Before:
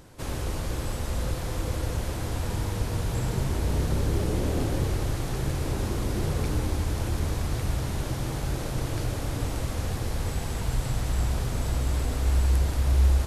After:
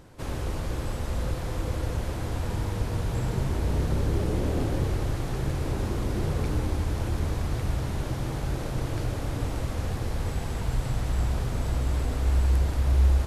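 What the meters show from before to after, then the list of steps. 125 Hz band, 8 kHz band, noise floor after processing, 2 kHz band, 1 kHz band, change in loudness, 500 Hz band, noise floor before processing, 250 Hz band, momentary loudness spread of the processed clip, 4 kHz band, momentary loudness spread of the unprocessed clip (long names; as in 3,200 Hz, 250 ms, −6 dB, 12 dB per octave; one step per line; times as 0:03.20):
0.0 dB, −5.5 dB, −32 dBFS, −1.0 dB, −0.5 dB, 0.0 dB, 0.0 dB, −32 dBFS, 0.0 dB, 6 LU, −3.0 dB, 6 LU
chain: high-shelf EQ 3,900 Hz −6.5 dB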